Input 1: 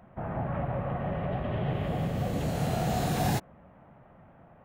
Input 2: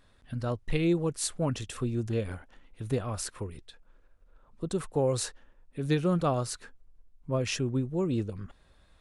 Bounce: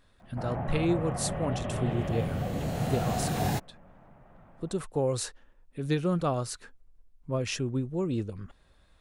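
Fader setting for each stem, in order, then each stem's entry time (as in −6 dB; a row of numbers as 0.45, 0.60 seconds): −1.5, −1.0 decibels; 0.20, 0.00 seconds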